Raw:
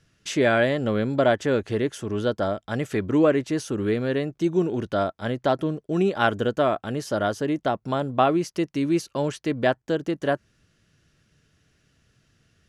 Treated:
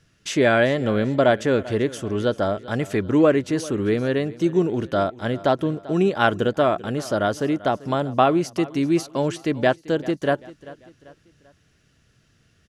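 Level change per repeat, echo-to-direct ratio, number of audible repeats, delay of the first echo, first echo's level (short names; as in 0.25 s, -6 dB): -7.5 dB, -18.0 dB, 3, 0.391 s, -19.0 dB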